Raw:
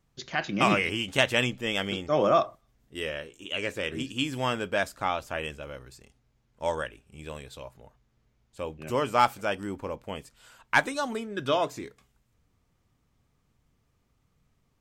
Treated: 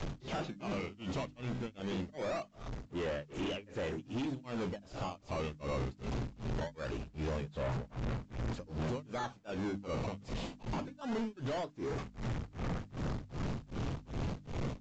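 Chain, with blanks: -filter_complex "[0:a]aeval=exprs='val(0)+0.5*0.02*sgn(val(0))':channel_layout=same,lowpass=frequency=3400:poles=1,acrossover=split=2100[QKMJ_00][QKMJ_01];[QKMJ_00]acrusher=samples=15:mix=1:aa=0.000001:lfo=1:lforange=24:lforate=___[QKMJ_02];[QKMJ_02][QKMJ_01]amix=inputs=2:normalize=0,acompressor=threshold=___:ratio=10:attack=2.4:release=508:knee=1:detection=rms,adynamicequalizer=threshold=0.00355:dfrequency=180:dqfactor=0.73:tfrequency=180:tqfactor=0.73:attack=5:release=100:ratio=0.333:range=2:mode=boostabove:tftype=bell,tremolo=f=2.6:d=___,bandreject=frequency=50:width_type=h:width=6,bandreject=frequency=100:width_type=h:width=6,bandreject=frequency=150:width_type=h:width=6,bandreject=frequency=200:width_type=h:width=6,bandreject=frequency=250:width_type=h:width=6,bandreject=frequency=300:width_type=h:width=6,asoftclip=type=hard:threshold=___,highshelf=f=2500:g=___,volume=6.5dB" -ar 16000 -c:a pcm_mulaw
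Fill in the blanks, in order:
0.22, -30dB, 1, -39.5dB, -8.5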